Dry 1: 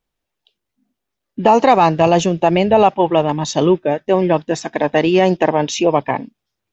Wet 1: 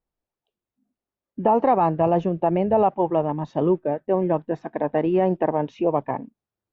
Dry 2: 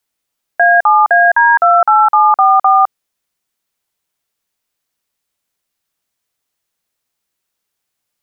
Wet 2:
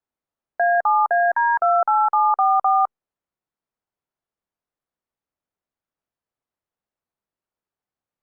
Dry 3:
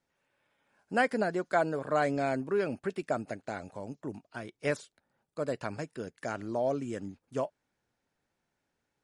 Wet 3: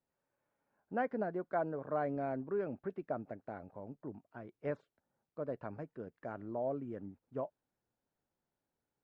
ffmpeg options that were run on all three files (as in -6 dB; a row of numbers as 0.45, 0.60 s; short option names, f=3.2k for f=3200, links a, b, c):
-af "lowpass=1.2k,volume=-6.5dB" -ar 48000 -c:a libopus -b:a 96k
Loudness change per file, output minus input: -7.0, -9.0, -7.0 LU